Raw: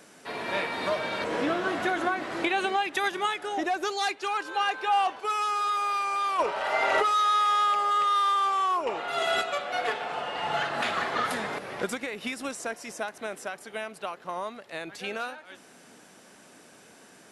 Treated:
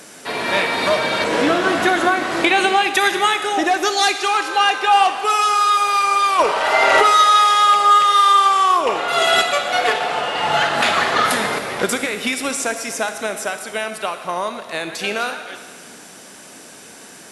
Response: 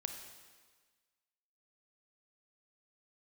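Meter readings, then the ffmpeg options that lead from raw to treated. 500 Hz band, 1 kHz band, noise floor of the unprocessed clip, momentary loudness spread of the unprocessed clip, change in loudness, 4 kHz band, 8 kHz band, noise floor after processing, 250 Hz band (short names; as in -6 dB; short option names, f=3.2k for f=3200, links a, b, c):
+10.5 dB, +11.0 dB, -54 dBFS, 13 LU, +11.5 dB, +14.0 dB, +16.0 dB, -41 dBFS, +10.5 dB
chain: -filter_complex "[0:a]asplit=2[a][b];[1:a]atrim=start_sample=2205,asetrate=36162,aresample=44100,highshelf=f=3.1k:g=9.5[c];[b][c]afir=irnorm=-1:irlink=0,volume=2.5dB[d];[a][d]amix=inputs=2:normalize=0,volume=3.5dB"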